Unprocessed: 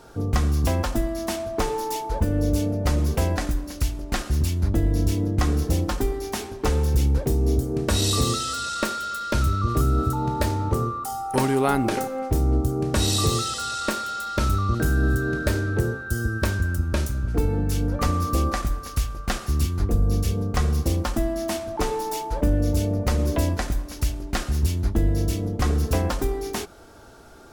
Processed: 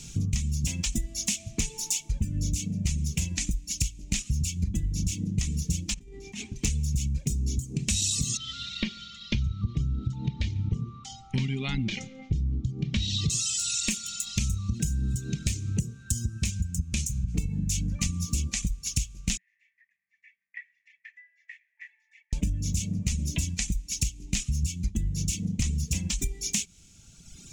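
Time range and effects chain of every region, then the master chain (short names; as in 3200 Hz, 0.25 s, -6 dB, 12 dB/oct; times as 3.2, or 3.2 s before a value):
5.94–6.56 low shelf 210 Hz -6.5 dB + negative-ratio compressor -33 dBFS + LPF 1000 Hz 6 dB/oct
8.37–13.3 LPF 3900 Hz 24 dB/oct + notch 2600 Hz, Q 9.8 + echo 0.142 s -18 dB
19.37–22.33 Butterworth band-pass 1900 Hz, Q 7 + comb 1.2 ms, depth 31%
whole clip: reverb removal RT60 1.7 s; EQ curve 100 Hz 0 dB, 180 Hz +6 dB, 310 Hz -14 dB, 580 Hz -26 dB, 1500 Hz -22 dB, 2400 Hz +5 dB, 4700 Hz +1 dB, 6800 Hz +14 dB, 12000 Hz -6 dB; compressor 6:1, threshold -32 dBFS; gain +7 dB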